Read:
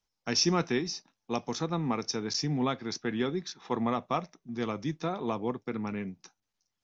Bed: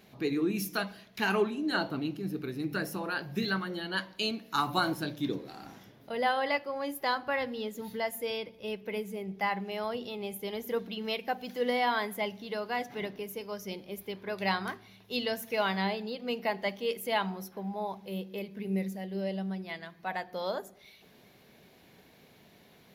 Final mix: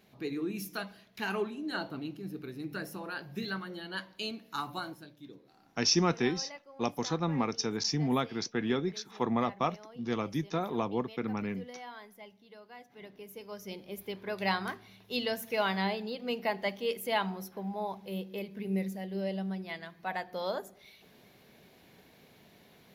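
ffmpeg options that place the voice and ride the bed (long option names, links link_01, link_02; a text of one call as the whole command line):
ffmpeg -i stem1.wav -i stem2.wav -filter_complex "[0:a]adelay=5500,volume=0dB[link_01];[1:a]volume=11.5dB,afade=type=out:start_time=4.46:duration=0.62:silence=0.251189,afade=type=in:start_time=12.9:duration=1.18:silence=0.141254[link_02];[link_01][link_02]amix=inputs=2:normalize=0" out.wav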